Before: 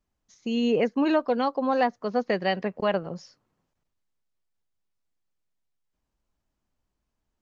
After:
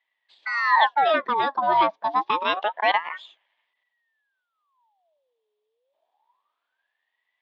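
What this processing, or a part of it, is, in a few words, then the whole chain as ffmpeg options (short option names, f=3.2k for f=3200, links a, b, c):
voice changer toy: -af "aeval=exprs='val(0)*sin(2*PI*1200*n/s+1200*0.65/0.27*sin(2*PI*0.27*n/s))':c=same,highpass=520,equalizer=f=650:t=q:w=4:g=4,equalizer=f=940:t=q:w=4:g=7,equalizer=f=1.4k:t=q:w=4:g=-10,equalizer=f=2.2k:t=q:w=4:g=-3,equalizer=f=3.4k:t=q:w=4:g=8,lowpass=f=3.9k:w=0.5412,lowpass=f=3.9k:w=1.3066,volume=6.5dB"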